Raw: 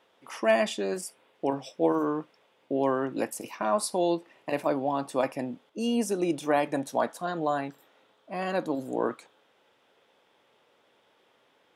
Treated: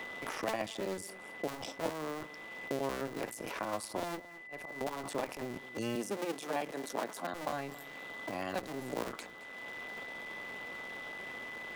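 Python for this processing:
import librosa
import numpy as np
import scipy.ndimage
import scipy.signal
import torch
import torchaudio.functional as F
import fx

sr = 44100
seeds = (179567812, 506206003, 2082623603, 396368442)

p1 = fx.cycle_switch(x, sr, every=2, mode='muted')
p2 = fx.highpass(p1, sr, hz=180.0, slope=24, at=(5.95, 7.33))
p3 = fx.over_compress(p2, sr, threshold_db=-49.0, ratio=-0.5)
p4 = p2 + (p3 * librosa.db_to_amplitude(-2.5))
p5 = fx.auto_swell(p4, sr, attack_ms=724.0, at=(4.17, 4.81))
p6 = p5 + 10.0 ** (-49.0 / 20.0) * np.sin(2.0 * np.pi * 2000.0 * np.arange(len(p5)) / sr)
p7 = p6 + fx.echo_single(p6, sr, ms=218, db=-21.0, dry=0)
p8 = fx.band_squash(p7, sr, depth_pct=70)
y = p8 * librosa.db_to_amplitude(-6.5)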